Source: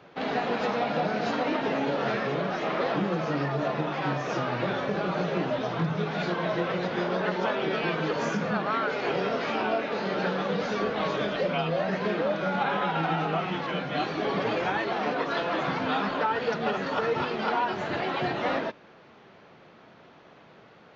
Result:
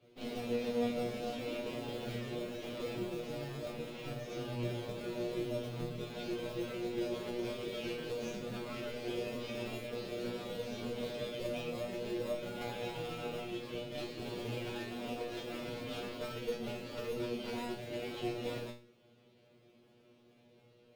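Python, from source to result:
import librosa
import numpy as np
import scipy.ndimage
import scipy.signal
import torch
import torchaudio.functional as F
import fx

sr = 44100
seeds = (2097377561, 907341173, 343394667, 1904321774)

p1 = fx.cheby_harmonics(x, sr, harmonics=(6,), levels_db=(-17,), full_scale_db=-12.5)
p2 = fx.sample_hold(p1, sr, seeds[0], rate_hz=1500.0, jitter_pct=0)
p3 = p1 + F.gain(torch.from_numpy(p2), -10.0).numpy()
p4 = fx.band_shelf(p3, sr, hz=1200.0, db=-11.0, octaves=1.7)
y = fx.comb_fb(p4, sr, f0_hz=120.0, decay_s=0.35, harmonics='all', damping=0.0, mix_pct=100)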